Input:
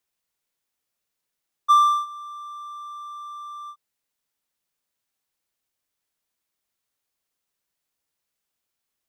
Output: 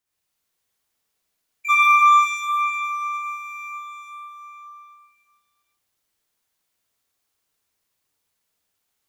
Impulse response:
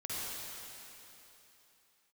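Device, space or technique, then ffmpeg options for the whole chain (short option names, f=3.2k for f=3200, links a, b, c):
shimmer-style reverb: -filter_complex "[0:a]asettb=1/sr,asplit=3[a][b][c];[a]atrim=end=1.714[d];[b]atrim=start=1.71:end=2.47,asetpts=PTS-STARTPTS,afade=t=in:d=0.004:c=qsin,afade=t=out:st=0.756:d=0.004:c=qsin,lowpass=7.6k[e];[c]atrim=start=2.466[f];[d][e]acrossfade=d=0.004:c1=hsin:c2=qsin[g];[g][f]acrossfade=d=0.004:c1=qsin:c2=hsin,asplit=2[h][i];[i]asetrate=88200,aresample=44100,atempo=0.5,volume=-9dB[j];[h][j]amix=inputs=2:normalize=0[k];[1:a]atrim=start_sample=2205[l];[k][l]afir=irnorm=-1:irlink=0,volume=2.5dB"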